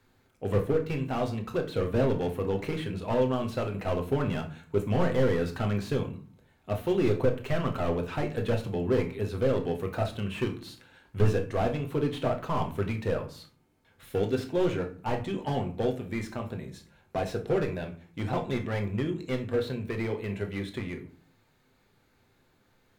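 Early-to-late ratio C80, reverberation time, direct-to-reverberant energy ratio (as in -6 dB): 17.0 dB, 0.45 s, 3.0 dB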